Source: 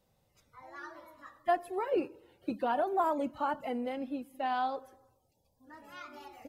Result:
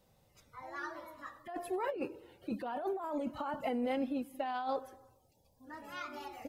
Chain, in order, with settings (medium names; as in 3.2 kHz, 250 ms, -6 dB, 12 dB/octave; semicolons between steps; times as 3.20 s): compressor with a negative ratio -36 dBFS, ratio -1